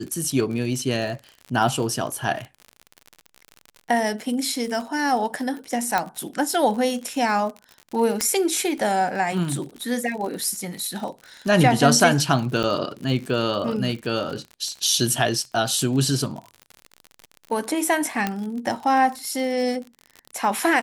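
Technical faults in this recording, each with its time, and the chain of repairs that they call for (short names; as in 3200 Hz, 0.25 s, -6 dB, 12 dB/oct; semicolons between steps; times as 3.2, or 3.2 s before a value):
crackle 59/s -30 dBFS
5.98 pop -8 dBFS
8.21 pop -5 dBFS
12.63–12.64 gap 8.6 ms
18.27 pop -9 dBFS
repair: de-click; interpolate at 12.63, 8.6 ms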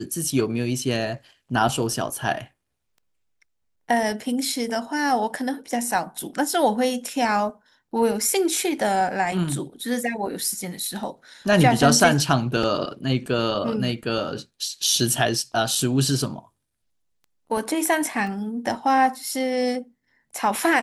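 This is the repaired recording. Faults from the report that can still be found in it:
5.98 pop
18.27 pop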